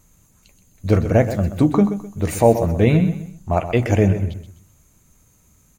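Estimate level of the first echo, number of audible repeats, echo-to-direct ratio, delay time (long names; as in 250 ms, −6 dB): −11.0 dB, 3, −10.5 dB, 128 ms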